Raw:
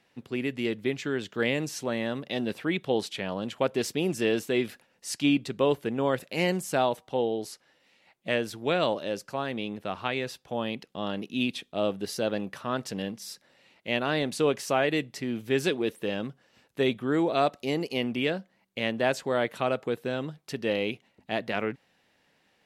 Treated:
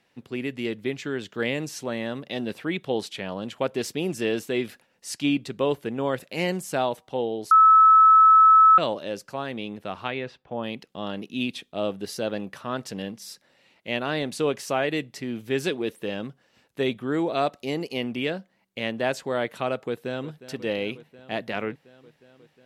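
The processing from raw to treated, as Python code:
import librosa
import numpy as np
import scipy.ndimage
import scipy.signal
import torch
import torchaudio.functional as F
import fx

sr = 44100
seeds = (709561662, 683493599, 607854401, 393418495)

y = fx.lowpass(x, sr, hz=fx.line((10.1, 3700.0), (10.62, 1800.0)), slope=12, at=(10.1, 10.62), fade=0.02)
y = fx.echo_throw(y, sr, start_s=19.87, length_s=0.59, ms=360, feedback_pct=80, wet_db=-15.0)
y = fx.edit(y, sr, fx.bleep(start_s=7.51, length_s=1.27, hz=1300.0, db=-10.5), tone=tone)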